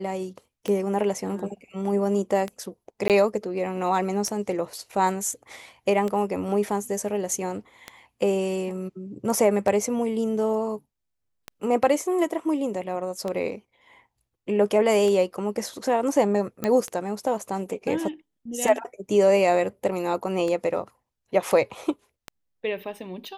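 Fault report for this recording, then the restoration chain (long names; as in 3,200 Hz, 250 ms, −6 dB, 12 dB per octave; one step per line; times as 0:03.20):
scratch tick 33 1/3 rpm −16 dBFS
0:03.08–0:03.10: drop-out 18 ms
0:16.64: click −12 dBFS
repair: click removal
repair the gap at 0:03.08, 18 ms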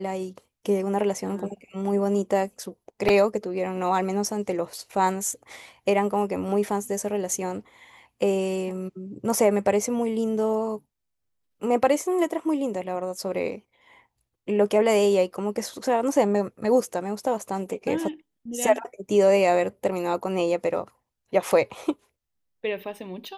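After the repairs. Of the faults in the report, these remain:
none of them is left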